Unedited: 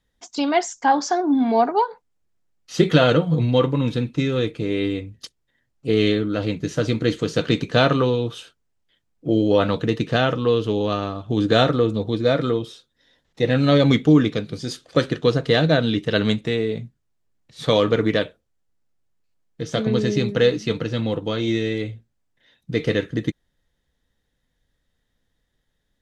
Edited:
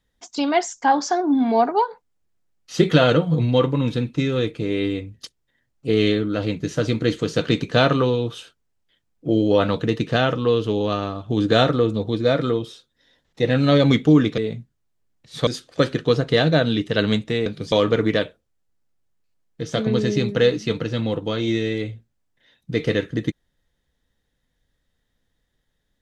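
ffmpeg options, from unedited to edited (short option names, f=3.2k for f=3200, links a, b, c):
-filter_complex "[0:a]asplit=5[a][b][c][d][e];[a]atrim=end=14.382[f];[b]atrim=start=16.628:end=17.722[g];[c]atrim=start=14.638:end=16.632[h];[d]atrim=start=14.378:end=14.642[i];[e]atrim=start=17.718[j];[f][g]acrossfade=d=0.004:c1=hsin:c2=hsin[k];[k][h]acrossfade=d=0.004:c1=hsin:c2=hsin[l];[l][i]acrossfade=d=0.004:c1=hsin:c2=hsin[m];[m][j]acrossfade=d=0.004:c1=hsin:c2=hsin"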